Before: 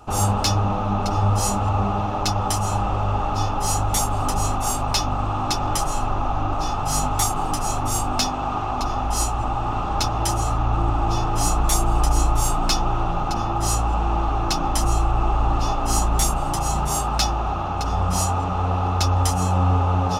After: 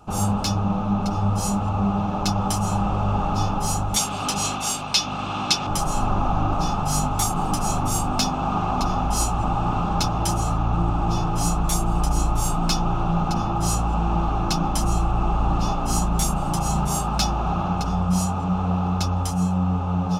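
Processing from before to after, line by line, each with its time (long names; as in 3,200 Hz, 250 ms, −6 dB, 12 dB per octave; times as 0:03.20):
0:03.96–0:05.67: meter weighting curve D
whole clip: parametric band 180 Hz +14.5 dB 0.44 octaves; speech leveller; notch filter 1,900 Hz, Q 7.5; level −3 dB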